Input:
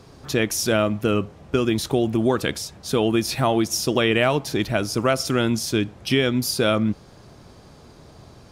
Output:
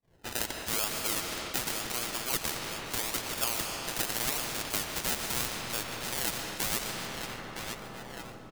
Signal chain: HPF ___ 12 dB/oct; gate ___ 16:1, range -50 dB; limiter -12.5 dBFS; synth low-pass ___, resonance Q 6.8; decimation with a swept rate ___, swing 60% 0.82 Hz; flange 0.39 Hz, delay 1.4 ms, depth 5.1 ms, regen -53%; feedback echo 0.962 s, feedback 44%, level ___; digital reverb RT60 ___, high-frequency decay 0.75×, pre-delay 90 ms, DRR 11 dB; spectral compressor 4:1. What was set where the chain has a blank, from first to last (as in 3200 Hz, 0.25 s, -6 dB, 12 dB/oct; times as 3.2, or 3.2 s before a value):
750 Hz, -51 dBFS, 1400 Hz, 31×, -17 dB, 3.3 s